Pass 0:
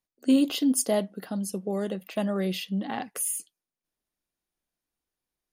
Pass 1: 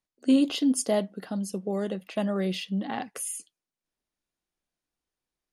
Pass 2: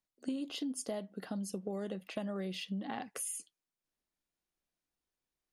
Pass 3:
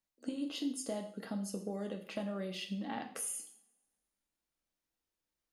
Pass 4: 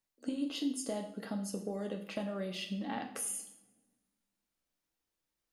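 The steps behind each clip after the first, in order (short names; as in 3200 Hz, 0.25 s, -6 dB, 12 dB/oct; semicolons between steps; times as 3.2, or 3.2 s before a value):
Bessel low-pass 8700 Hz, order 4
compressor 12:1, threshold -31 dBFS, peak gain reduction 15 dB; gain -3.5 dB
two-slope reverb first 0.53 s, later 1.5 s, from -23 dB, DRR 3.5 dB; gain -1.5 dB
shoebox room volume 850 m³, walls mixed, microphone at 0.31 m; gain +1.5 dB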